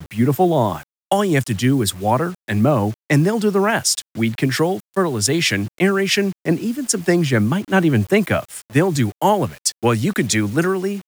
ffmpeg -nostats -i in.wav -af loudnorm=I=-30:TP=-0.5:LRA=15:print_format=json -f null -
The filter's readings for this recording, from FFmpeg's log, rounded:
"input_i" : "-18.6",
"input_tp" : "-2.8",
"input_lra" : "1.2",
"input_thresh" : "-28.7",